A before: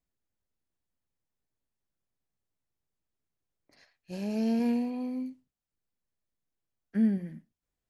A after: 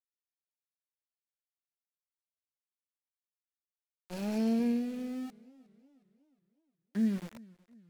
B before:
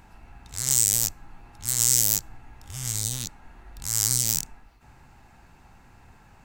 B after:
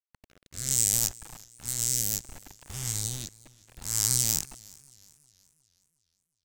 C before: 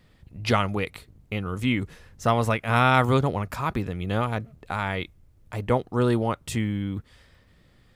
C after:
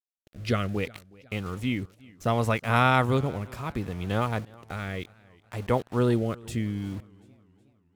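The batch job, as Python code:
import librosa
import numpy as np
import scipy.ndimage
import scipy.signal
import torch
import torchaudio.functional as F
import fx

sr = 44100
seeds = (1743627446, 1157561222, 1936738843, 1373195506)

y = np.where(np.abs(x) >= 10.0 ** (-38.5 / 20.0), x, 0.0)
y = fx.rotary(y, sr, hz=0.65)
y = fx.echo_warbled(y, sr, ms=365, feedback_pct=46, rate_hz=2.8, cents=111, wet_db=-23.5)
y = F.gain(torch.from_numpy(y), -1.0).numpy()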